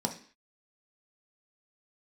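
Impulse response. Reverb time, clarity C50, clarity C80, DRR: 0.45 s, 11.0 dB, 16.0 dB, 2.5 dB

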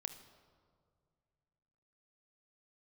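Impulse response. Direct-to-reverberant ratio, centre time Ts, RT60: 7.5 dB, 16 ms, 2.1 s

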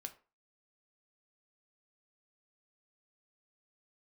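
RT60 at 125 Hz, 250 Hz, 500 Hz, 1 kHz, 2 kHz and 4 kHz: 0.30, 0.30, 0.35, 0.35, 0.30, 0.25 s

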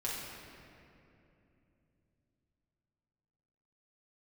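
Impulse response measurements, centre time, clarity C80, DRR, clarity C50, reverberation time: 0.13 s, 1.0 dB, -6.5 dB, -1.0 dB, 2.9 s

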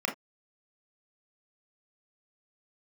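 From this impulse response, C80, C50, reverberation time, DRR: 24.5 dB, 12.0 dB, not exponential, 1.0 dB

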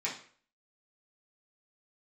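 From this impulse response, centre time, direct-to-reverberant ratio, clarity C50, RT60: 25 ms, -8.0 dB, 7.5 dB, 0.50 s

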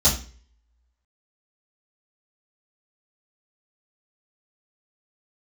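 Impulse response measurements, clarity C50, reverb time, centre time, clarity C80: 9.0 dB, 0.40 s, 24 ms, 14.0 dB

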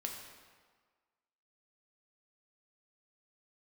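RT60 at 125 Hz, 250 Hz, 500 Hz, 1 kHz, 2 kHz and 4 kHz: 1.3, 1.4, 1.5, 1.6, 1.4, 1.2 s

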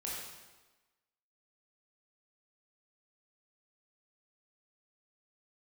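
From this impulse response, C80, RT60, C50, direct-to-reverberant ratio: 2.0 dB, 1.2 s, -0.5 dB, -5.5 dB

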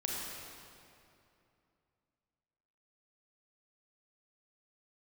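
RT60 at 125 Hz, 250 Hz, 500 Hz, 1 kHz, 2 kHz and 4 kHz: 3.2, 3.0, 2.8, 2.6, 2.3, 1.9 s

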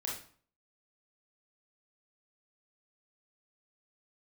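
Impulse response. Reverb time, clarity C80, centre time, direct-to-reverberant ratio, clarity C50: 0.50 s, 9.5 dB, 39 ms, -3.5 dB, 3.5 dB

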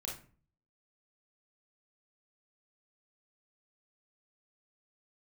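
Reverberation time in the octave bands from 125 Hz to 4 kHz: 0.70, 0.55, 0.45, 0.40, 0.35, 0.25 s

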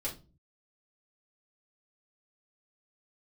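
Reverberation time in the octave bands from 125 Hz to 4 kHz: 0.75, 0.55, 0.40, 0.25, 0.25, 0.25 s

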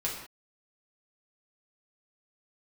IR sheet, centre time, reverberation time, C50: 39 ms, not exponential, 4.5 dB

